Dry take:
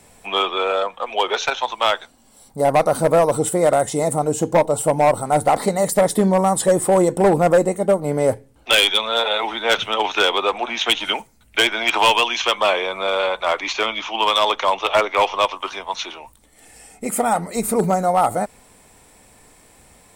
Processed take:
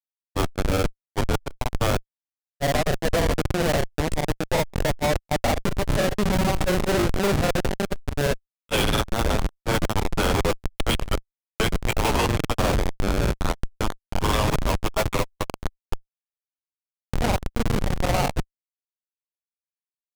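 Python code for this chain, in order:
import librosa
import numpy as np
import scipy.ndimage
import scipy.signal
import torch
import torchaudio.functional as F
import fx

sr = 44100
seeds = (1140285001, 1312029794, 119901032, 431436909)

y = x + 10.0 ** (-8.0 / 20.0) * np.pad(x, (int(98 * sr / 1000.0), 0))[:len(x)]
y = fx.schmitt(y, sr, flips_db=-13.0)
y = fx.granulator(y, sr, seeds[0], grain_ms=100.0, per_s=20.0, spray_ms=35.0, spread_st=0)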